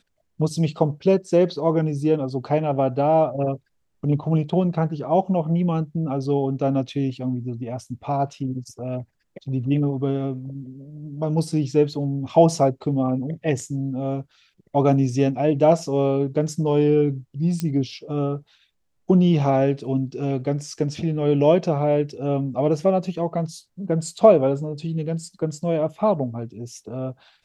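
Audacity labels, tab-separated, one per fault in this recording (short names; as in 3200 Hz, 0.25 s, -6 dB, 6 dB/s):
17.600000	17.600000	pop -12 dBFS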